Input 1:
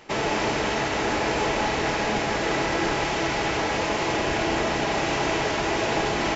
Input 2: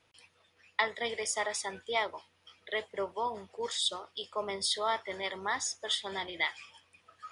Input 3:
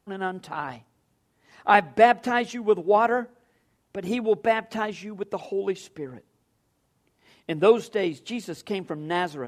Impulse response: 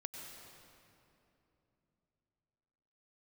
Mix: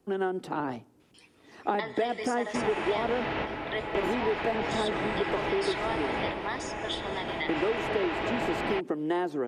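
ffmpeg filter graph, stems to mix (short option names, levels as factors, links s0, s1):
-filter_complex "[0:a]lowpass=f=3300:w=0.5412,lowpass=f=3300:w=1.3066,adelay=2450,volume=0.501,asplit=2[s0][s1];[s1]volume=0.708[s2];[1:a]adelay=1000,volume=0.891,asplit=2[s3][s4];[s4]volume=0.501[s5];[2:a]equalizer=f=330:w=1.1:g=13,acrossover=split=310|1800[s6][s7][s8];[s6]acompressor=threshold=0.0224:ratio=4[s9];[s7]acompressor=threshold=0.112:ratio=4[s10];[s8]acompressor=threshold=0.00631:ratio=4[s11];[s9][s10][s11]amix=inputs=3:normalize=0,volume=0.891,asplit=2[s12][s13];[s13]apad=whole_len=388402[s14];[s0][s14]sidechaingate=range=0.0224:threshold=0.00316:ratio=16:detection=peak[s15];[3:a]atrim=start_sample=2205[s16];[s2][s5]amix=inputs=2:normalize=0[s17];[s17][s16]afir=irnorm=-1:irlink=0[s18];[s15][s3][s12][s18]amix=inputs=4:normalize=0,acrossover=split=670|3900[s19][s20][s21];[s19]acompressor=threshold=0.0355:ratio=4[s22];[s20]acompressor=threshold=0.0251:ratio=4[s23];[s21]acompressor=threshold=0.00398:ratio=4[s24];[s22][s23][s24]amix=inputs=3:normalize=0"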